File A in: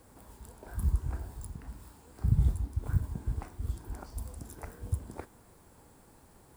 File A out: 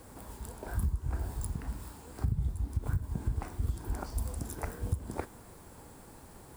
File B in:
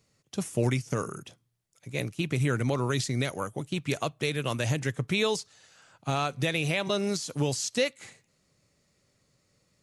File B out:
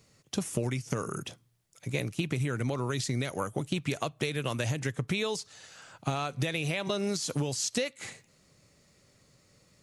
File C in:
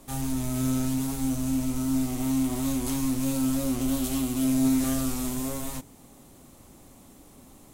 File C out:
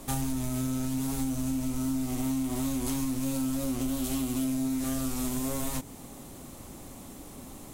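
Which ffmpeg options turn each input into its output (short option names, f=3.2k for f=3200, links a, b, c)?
-af "acompressor=threshold=-33dB:ratio=16,volume=6.5dB"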